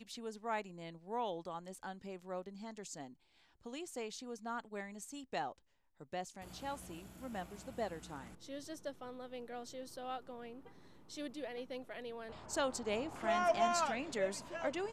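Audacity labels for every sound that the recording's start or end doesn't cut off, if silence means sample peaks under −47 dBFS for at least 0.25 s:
3.660000	5.520000	sound
6.010000	10.670000	sound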